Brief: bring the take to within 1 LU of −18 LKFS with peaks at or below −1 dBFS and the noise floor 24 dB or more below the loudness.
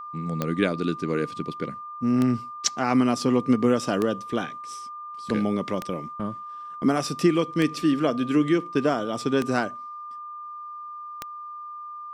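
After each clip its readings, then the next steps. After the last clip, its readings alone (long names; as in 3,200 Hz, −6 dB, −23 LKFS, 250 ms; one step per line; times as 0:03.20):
number of clicks 7; interfering tone 1,200 Hz; level of the tone −35 dBFS; integrated loudness −25.0 LKFS; sample peak −8.0 dBFS; target loudness −18.0 LKFS
→ click removal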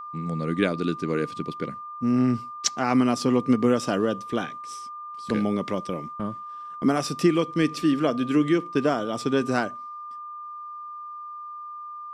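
number of clicks 0; interfering tone 1,200 Hz; level of the tone −35 dBFS
→ notch filter 1,200 Hz, Q 30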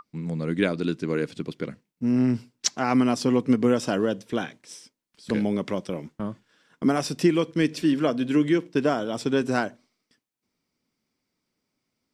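interfering tone none found; integrated loudness −25.0 LKFS; sample peak −8.5 dBFS; target loudness −18.0 LKFS
→ level +7 dB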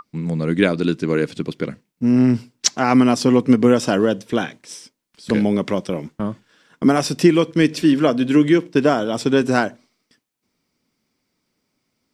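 integrated loudness −18.0 LKFS; sample peak −1.5 dBFS; background noise floor −74 dBFS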